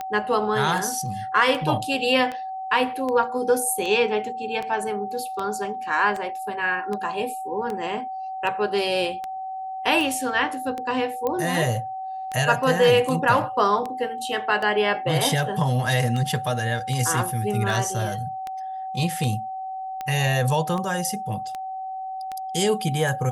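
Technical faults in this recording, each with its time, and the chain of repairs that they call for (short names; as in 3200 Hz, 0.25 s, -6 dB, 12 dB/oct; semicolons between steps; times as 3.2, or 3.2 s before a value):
tick 78 rpm -17 dBFS
tone 760 Hz -29 dBFS
11.27 pop -13 dBFS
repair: de-click; notch 760 Hz, Q 30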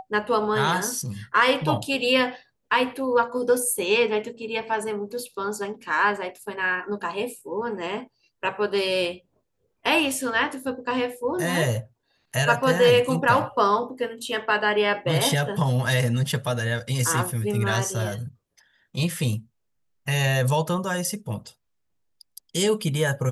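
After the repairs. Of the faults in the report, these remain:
11.27 pop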